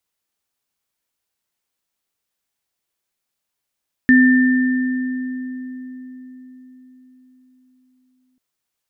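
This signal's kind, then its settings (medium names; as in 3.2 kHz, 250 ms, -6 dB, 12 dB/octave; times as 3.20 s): sine partials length 4.29 s, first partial 255 Hz, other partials 1.79 kHz, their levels -4 dB, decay 4.79 s, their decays 2.77 s, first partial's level -8 dB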